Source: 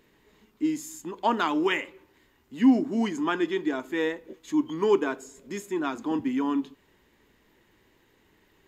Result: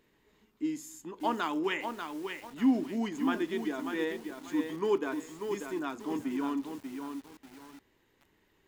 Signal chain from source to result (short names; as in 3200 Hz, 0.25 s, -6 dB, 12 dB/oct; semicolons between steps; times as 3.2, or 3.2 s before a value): lo-fi delay 0.59 s, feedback 35%, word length 7-bit, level -6 dB; gain -6.5 dB